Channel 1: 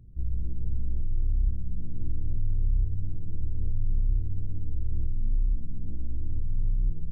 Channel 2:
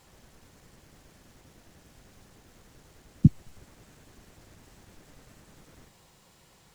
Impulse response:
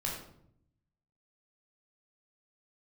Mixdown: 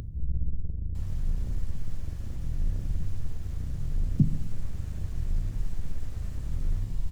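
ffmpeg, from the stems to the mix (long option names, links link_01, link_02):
-filter_complex "[0:a]acontrast=77,asoftclip=type=tanh:threshold=-26dB,volume=-7.5dB,asplit=2[link_01][link_02];[link_02]volume=-4.5dB[link_03];[1:a]highpass=frequency=110:width=0.5412,highpass=frequency=110:width=1.3066,alimiter=limit=-15.5dB:level=0:latency=1:release=46,adelay=950,volume=1dB,asplit=2[link_04][link_05];[link_05]volume=-13dB[link_06];[2:a]atrim=start_sample=2205[link_07];[link_03][link_06]amix=inputs=2:normalize=0[link_08];[link_08][link_07]afir=irnorm=-1:irlink=0[link_09];[link_01][link_04][link_09]amix=inputs=3:normalize=0,equalizer=frequency=87:width=1.5:gain=4,acompressor=mode=upward:threshold=-30dB:ratio=2.5"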